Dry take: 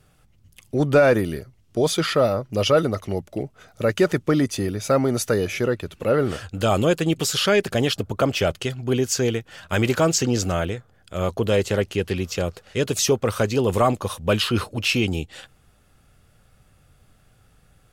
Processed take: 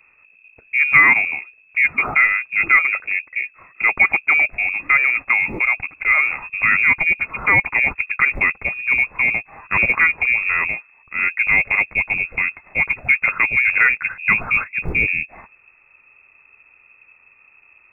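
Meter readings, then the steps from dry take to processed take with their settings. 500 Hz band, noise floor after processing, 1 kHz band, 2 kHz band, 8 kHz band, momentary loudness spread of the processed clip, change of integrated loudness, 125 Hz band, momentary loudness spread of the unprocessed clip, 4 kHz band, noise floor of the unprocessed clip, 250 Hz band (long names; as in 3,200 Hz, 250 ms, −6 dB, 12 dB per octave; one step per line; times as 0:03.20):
−17.5 dB, −54 dBFS, +2.5 dB, +17.0 dB, below −25 dB, 8 LU, +6.0 dB, −12.5 dB, 9 LU, below −15 dB, −58 dBFS, −14.0 dB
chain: voice inversion scrambler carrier 2,600 Hz
floating-point word with a short mantissa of 6 bits
level +3.5 dB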